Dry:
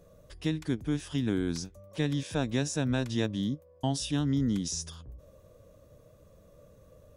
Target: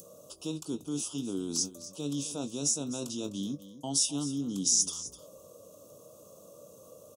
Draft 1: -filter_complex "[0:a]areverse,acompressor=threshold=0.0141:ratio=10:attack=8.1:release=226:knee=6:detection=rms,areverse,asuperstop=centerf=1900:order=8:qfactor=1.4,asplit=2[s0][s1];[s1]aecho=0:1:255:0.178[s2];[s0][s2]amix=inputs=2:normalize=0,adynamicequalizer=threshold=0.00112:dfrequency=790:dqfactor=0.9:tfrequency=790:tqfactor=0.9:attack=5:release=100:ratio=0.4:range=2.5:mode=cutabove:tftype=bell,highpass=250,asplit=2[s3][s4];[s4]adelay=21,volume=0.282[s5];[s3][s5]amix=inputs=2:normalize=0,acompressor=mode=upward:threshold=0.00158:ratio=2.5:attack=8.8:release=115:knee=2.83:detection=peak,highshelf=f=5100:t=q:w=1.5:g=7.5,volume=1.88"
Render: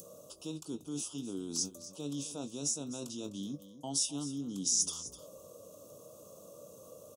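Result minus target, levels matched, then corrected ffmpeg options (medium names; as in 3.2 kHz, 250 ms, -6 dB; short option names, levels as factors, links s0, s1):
compression: peak gain reduction +5.5 dB
-filter_complex "[0:a]areverse,acompressor=threshold=0.0282:ratio=10:attack=8.1:release=226:knee=6:detection=rms,areverse,asuperstop=centerf=1900:order=8:qfactor=1.4,asplit=2[s0][s1];[s1]aecho=0:1:255:0.178[s2];[s0][s2]amix=inputs=2:normalize=0,adynamicequalizer=threshold=0.00112:dfrequency=790:dqfactor=0.9:tfrequency=790:tqfactor=0.9:attack=5:release=100:ratio=0.4:range=2.5:mode=cutabove:tftype=bell,highpass=250,asplit=2[s3][s4];[s4]adelay=21,volume=0.282[s5];[s3][s5]amix=inputs=2:normalize=0,acompressor=mode=upward:threshold=0.00158:ratio=2.5:attack=8.8:release=115:knee=2.83:detection=peak,highshelf=f=5100:t=q:w=1.5:g=7.5,volume=1.88"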